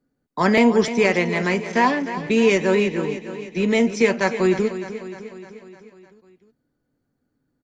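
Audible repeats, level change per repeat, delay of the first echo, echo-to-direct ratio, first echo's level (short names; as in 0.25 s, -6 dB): 5, -4.5 dB, 0.304 s, -10.0 dB, -12.0 dB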